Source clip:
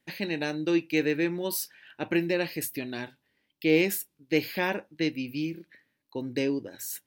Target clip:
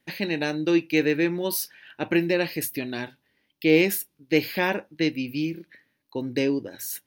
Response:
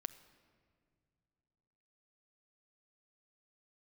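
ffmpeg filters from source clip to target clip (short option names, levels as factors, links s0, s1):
-af "equalizer=f=7600:w=6.5:g=-8,volume=1.58"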